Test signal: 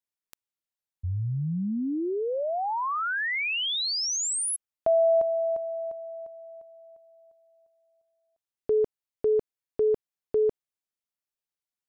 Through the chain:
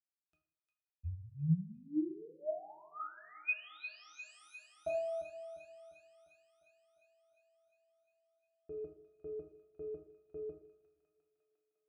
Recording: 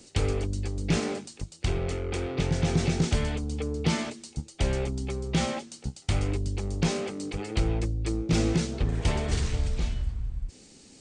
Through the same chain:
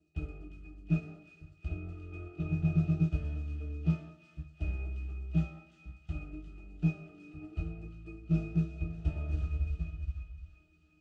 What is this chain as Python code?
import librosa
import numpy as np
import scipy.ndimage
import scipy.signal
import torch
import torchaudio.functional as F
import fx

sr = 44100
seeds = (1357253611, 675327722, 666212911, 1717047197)

y = fx.high_shelf(x, sr, hz=3300.0, db=6.0)
y = fx.octave_resonator(y, sr, note='D#', decay_s=0.15)
y = fx.echo_wet_highpass(y, sr, ms=353, feedback_pct=68, hz=1600.0, wet_db=-6)
y = fx.rev_double_slope(y, sr, seeds[0], early_s=0.52, late_s=1.8, knee_db=-18, drr_db=1.0)
y = fx.upward_expand(y, sr, threshold_db=-39.0, expansion=1.5)